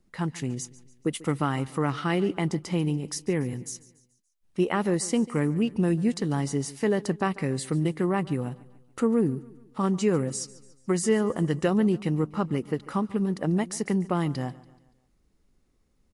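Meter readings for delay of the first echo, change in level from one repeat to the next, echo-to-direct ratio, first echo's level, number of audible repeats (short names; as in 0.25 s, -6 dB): 0.143 s, -6.5 dB, -19.0 dB, -20.0 dB, 3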